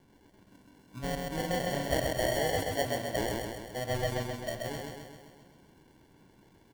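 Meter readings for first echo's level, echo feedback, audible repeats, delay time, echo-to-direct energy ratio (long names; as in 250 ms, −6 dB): −3.0 dB, 59%, 7, 131 ms, −1.0 dB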